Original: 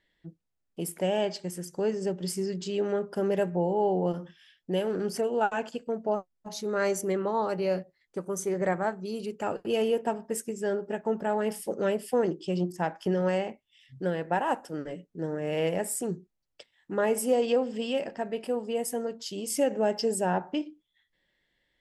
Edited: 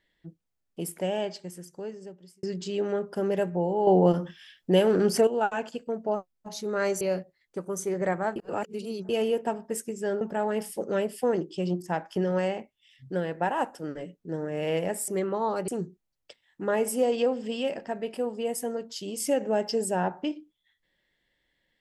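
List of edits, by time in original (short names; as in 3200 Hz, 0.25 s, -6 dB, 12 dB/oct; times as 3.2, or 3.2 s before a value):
0.81–2.43 fade out
3.87–5.27 gain +7.5 dB
7.01–7.61 move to 15.98
8.96–9.69 reverse
10.81–11.11 cut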